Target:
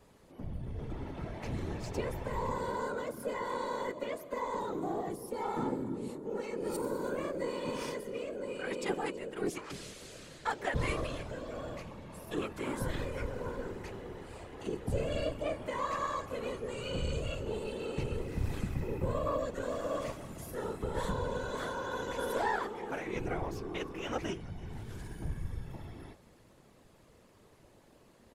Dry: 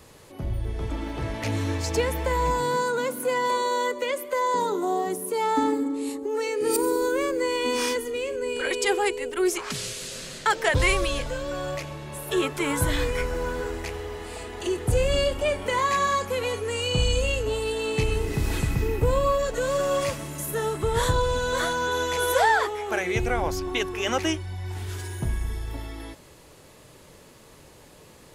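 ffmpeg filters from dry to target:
ffmpeg -i in.wav -filter_complex "[0:a]highshelf=frequency=2100:gain=-7.5,asplit=5[link_01][link_02][link_03][link_04][link_05];[link_02]adelay=326,afreqshift=33,volume=-22dB[link_06];[link_03]adelay=652,afreqshift=66,volume=-27.8dB[link_07];[link_04]adelay=978,afreqshift=99,volume=-33.7dB[link_08];[link_05]adelay=1304,afreqshift=132,volume=-39.5dB[link_09];[link_01][link_06][link_07][link_08][link_09]amix=inputs=5:normalize=0,asplit=2[link_10][link_11];[link_11]aeval=exprs='clip(val(0),-1,0.0376)':channel_layout=same,volume=-7dB[link_12];[link_10][link_12]amix=inputs=2:normalize=0,afftfilt=real='hypot(re,im)*cos(2*PI*random(0))':imag='hypot(re,im)*sin(2*PI*random(1))':win_size=512:overlap=0.75,asplit=3[link_13][link_14][link_15];[link_14]asetrate=22050,aresample=44100,atempo=2,volume=-10dB[link_16];[link_15]asetrate=37084,aresample=44100,atempo=1.18921,volume=-18dB[link_17];[link_13][link_16][link_17]amix=inputs=3:normalize=0,volume=-7dB" out.wav

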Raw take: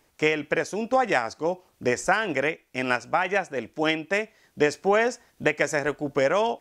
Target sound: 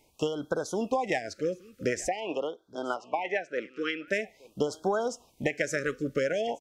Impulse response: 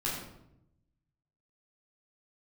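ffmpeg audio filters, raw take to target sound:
-filter_complex "[0:a]acompressor=threshold=-24dB:ratio=6,asettb=1/sr,asplit=3[link_01][link_02][link_03];[link_01]atrim=end=2.084[link_04];[link_02]atrim=start=2.08:end=4.08,asetpts=PTS-STARTPTS,afade=type=in:duration=0.004:curve=qsin,afade=type=out:start_time=1.996:duration=0.004:curve=qsin,highpass=330,lowpass=3900[link_05];[link_03]atrim=start=4.076[link_06];[link_04][link_05]acrossfade=duration=0.004:curve1=hsin:curve2=qsin[link_07];[link_07][link_06]acrossfade=duration=0.004:curve1=qsin:curve2=hsin,aecho=1:1:873:0.0794,afftfilt=real='re*(1-between(b*sr/1024,780*pow(2300/780,0.5+0.5*sin(2*PI*0.46*pts/sr))/1.41,780*pow(2300/780,0.5+0.5*sin(2*PI*0.46*pts/sr))*1.41))':imag='im*(1-between(b*sr/1024,780*pow(2300/780,0.5+0.5*sin(2*PI*0.46*pts/sr))/1.41,780*pow(2300/780,0.5+0.5*sin(2*PI*0.46*pts/sr))*1.41))':win_size=1024:overlap=0.75"

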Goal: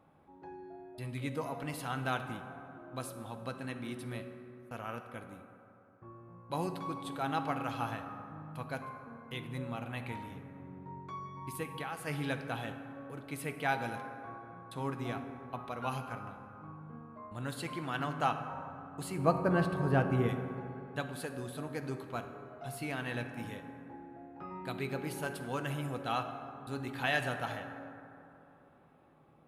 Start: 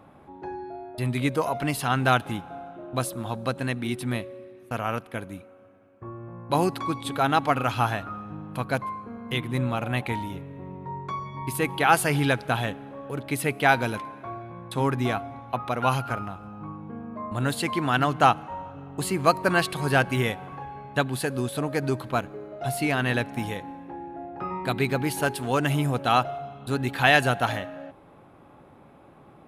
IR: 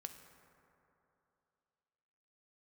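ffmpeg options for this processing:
-filter_complex "[0:a]asplit=3[link_01][link_02][link_03];[link_01]afade=type=out:start_time=11.62:duration=0.02[link_04];[link_02]acompressor=threshold=-25dB:ratio=6,afade=type=in:start_time=11.62:duration=0.02,afade=type=out:start_time=12.06:duration=0.02[link_05];[link_03]afade=type=in:start_time=12.06:duration=0.02[link_06];[link_04][link_05][link_06]amix=inputs=3:normalize=0,asettb=1/sr,asplit=3[link_07][link_08][link_09];[link_07]atrim=end=19.184[link_10];[link_08]atrim=start=19.18:end=20.29,asetpts=PTS-STARTPTS,afade=type=in:duration=0.004:curve=qsin,afade=type=out:start_time=1.106:duration=0.004:curve=qsin,tiltshelf=frequency=1400:gain=9[link_11];[link_09]atrim=start=20.286[link_12];[link_10][link_11]acrossfade=duration=0.004:curve1=hsin:curve2=qsin[link_13];[link_13][link_12]acrossfade=duration=0.004:curve1=qsin:curve2=hsin[link_14];[1:a]atrim=start_sample=2205[link_15];[link_14][link_15]afir=irnorm=-1:irlink=0,volume=-8dB"

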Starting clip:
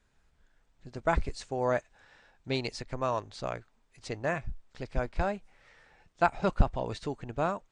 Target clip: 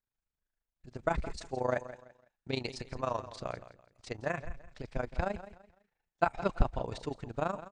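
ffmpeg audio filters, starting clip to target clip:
ffmpeg -i in.wav -filter_complex "[0:a]agate=range=-20dB:threshold=-54dB:ratio=16:detection=peak,tremolo=f=26:d=0.824,asplit=2[link_01][link_02];[link_02]aecho=0:1:168|336|504:0.188|0.0565|0.017[link_03];[link_01][link_03]amix=inputs=2:normalize=0" out.wav

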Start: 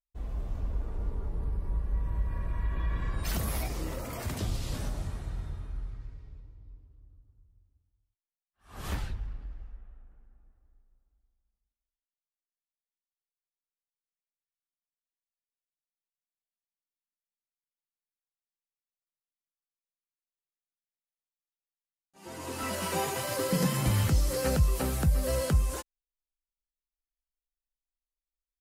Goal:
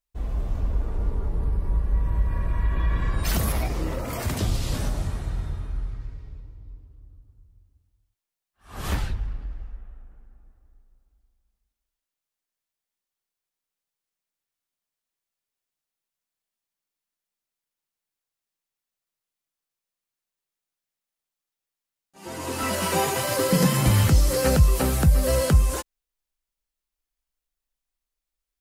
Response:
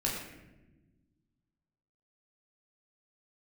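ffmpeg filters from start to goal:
-filter_complex "[0:a]asettb=1/sr,asplit=3[link_01][link_02][link_03];[link_01]atrim=end=3.524[link_04];[link_02]atrim=start=3.52:end=4.08,asetpts=PTS-STARTPTS,afade=type=in:duration=0.004:curve=qsin,afade=type=out:start_time=0.556:duration=0.004:curve=qsin,highshelf=frequency=4300:gain=-9[link_05];[link_03]atrim=start=4.076[link_06];[link_04][link_05]acrossfade=duration=0.004:curve1=hsin:curve2=qsin[link_07];[link_07][link_06]acrossfade=duration=0.004:curve1=qsin:curve2=hsin,volume=7.5dB"

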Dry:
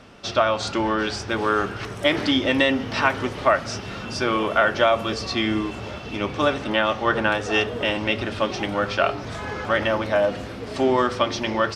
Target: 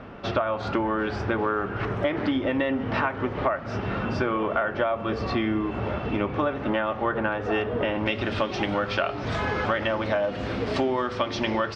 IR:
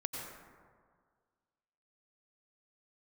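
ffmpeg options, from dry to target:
-af "asetnsamples=nb_out_samples=441:pad=0,asendcmd='8.06 lowpass f 4200',lowpass=1800,acompressor=threshold=-29dB:ratio=6,volume=6.5dB"

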